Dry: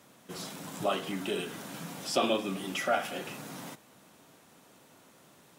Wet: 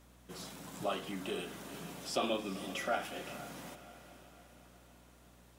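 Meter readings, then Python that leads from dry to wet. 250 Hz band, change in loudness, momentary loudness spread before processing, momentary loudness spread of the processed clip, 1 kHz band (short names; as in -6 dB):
-5.5 dB, -6.0 dB, 14 LU, 20 LU, -5.5 dB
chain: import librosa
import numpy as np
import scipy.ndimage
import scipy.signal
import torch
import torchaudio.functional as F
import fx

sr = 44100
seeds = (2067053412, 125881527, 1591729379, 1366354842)

y = fx.add_hum(x, sr, base_hz=60, snr_db=21)
y = fx.echo_diffused(y, sr, ms=458, feedback_pct=51, wet_db=-13.5)
y = y * 10.0 ** (-6.0 / 20.0)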